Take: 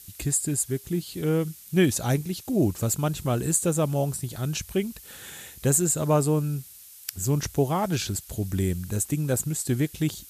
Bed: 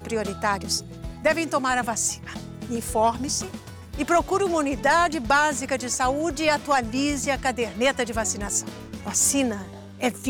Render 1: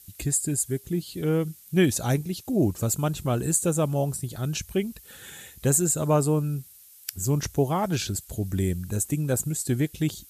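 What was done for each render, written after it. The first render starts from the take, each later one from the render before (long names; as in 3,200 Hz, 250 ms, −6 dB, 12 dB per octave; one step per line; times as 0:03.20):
broadband denoise 6 dB, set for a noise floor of −48 dBFS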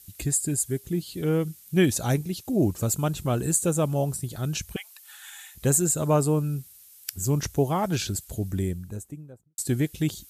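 0:04.76–0:05.55: Butterworth high-pass 760 Hz 48 dB per octave
0:08.24–0:09.58: fade out and dull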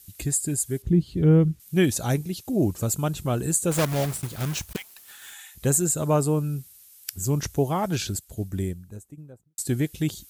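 0:00.82–0:01.60: RIAA equalisation playback
0:03.71–0:05.34: one scale factor per block 3 bits
0:08.19–0:09.18: expander for the loud parts, over −39 dBFS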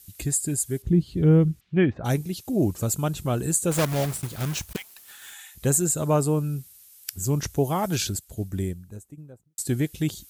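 0:01.59–0:02.04: low-pass filter 3,900 Hz → 1,700 Hz 24 dB per octave
0:07.63–0:08.08: high-shelf EQ 8,300 Hz → 5,000 Hz +7.5 dB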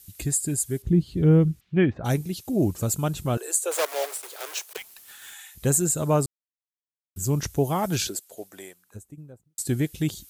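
0:03.37–0:04.77: Butterworth high-pass 400 Hz 48 dB per octave
0:06.26–0:07.16: silence
0:08.07–0:08.94: high-pass with resonance 370 Hz → 1,100 Hz, resonance Q 1.7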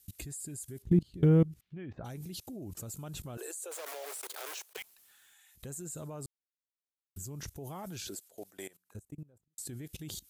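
brickwall limiter −15.5 dBFS, peak gain reduction 7 dB
output level in coarse steps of 21 dB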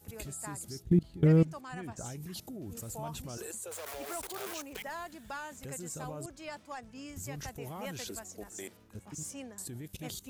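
mix in bed −22 dB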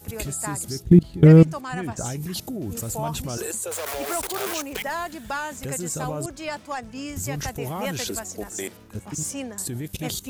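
level +12 dB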